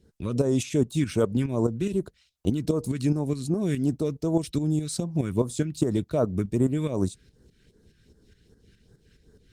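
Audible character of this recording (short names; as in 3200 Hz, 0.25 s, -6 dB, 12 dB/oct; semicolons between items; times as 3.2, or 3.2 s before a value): tremolo saw up 4.8 Hz, depth 65%; phasing stages 2, 2.6 Hz, lowest notch 690–2500 Hz; Opus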